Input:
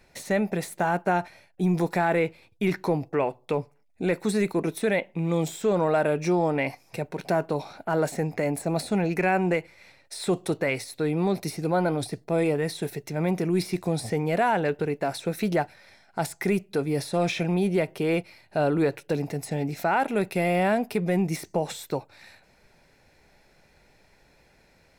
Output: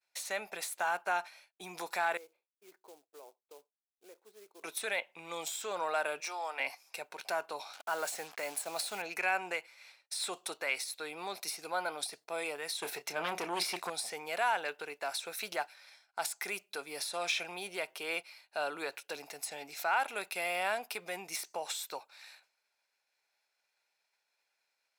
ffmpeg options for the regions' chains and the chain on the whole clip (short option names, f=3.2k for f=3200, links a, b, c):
-filter_complex "[0:a]asettb=1/sr,asplit=3[a][b][c];[a]atrim=end=2.174[d];[b]atrim=start=2.17:end=4.63,asetpts=PTS-STARTPTS,afade=t=in:d=0.004:c=qsin,afade=t=out:st=2.456:d=0.004:c=qsin,acompressor=threshold=-38dB:ratio=2:attack=3.2:release=140:knee=1:detection=peak,bandpass=f=400:t=q:w=2,acrusher=bits=6:mode=log:mix=0:aa=0.000001[e];[c]atrim=start=4.626[f];[d][e]acrossfade=d=0.004:c1=hsin:c2=qsin[g];[g][f]acrossfade=d=0.004:c1=qsin:c2=hsin,asettb=1/sr,asplit=3[h][i][j];[h]atrim=end=6.204[k];[i]atrim=start=6.2:end=6.6,asetpts=PTS-STARTPTS,afade=t=in:d=0.004:c=qsin,afade=t=out:st=0.396:d=0.004:c=qsin,deesser=0.8,highpass=660[l];[j]atrim=start=6.596[m];[k][l]acrossfade=d=0.004:c1=hsin:c2=qsin[n];[n][m]acrossfade=d=0.004:c1=qsin:c2=hsin,asettb=1/sr,asplit=3[o][p][q];[o]atrim=end=7.734[r];[p]atrim=start=7.73:end=9.02,asetpts=PTS-STARTPTS,afade=t=in:d=0.004:c=qsin,afade=t=out:st=1.286:d=0.004:c=qsin,highpass=89,acrusher=bits=6:mix=0:aa=0.5[s];[q]atrim=start=9.016[t];[r][s]acrossfade=d=0.004:c1=hsin:c2=qsin[u];[u][t]acrossfade=d=0.004:c1=qsin:c2=hsin,asettb=1/sr,asplit=3[v][w][x];[v]atrim=end=12.824[y];[w]atrim=start=12.82:end=13.9,asetpts=PTS-STARTPTS,afade=t=in:d=0.004:c=qsin,afade=t=out:st=1.076:d=0.004:c=qsin,highshelf=f=3.6k:g=-8.5,asplit=2[z][aa];[aa]adelay=29,volume=-11dB[ab];[z][ab]amix=inputs=2:normalize=0,atrim=end_sample=47628,aeval=exprs='0.188*sin(PI/2*1.78*val(0)/0.188)':c=same[ac];[x]atrim=start=13.896[ad];[y][ac]acrossfade=d=0.004:c1=hsin:c2=qsin[ae];[ae][ad]acrossfade=d=0.004:c1=qsin:c2=hsin,highpass=1.2k,agate=range=-33dB:threshold=-54dB:ratio=3:detection=peak,equalizer=f=1.9k:w=3.7:g=-7"